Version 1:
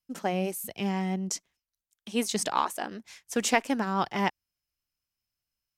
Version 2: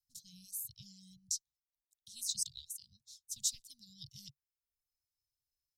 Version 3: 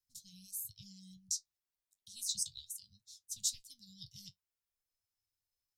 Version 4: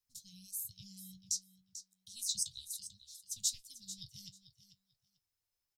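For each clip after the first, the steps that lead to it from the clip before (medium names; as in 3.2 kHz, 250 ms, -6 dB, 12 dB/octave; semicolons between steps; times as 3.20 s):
Chebyshev band-stop 140–3800 Hz, order 5; reverb removal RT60 0.76 s; trim -2.5 dB
flange 0.35 Hz, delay 9.7 ms, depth 1.3 ms, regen +53%; trim +4 dB
feedback delay 442 ms, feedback 16%, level -13 dB; trim +1 dB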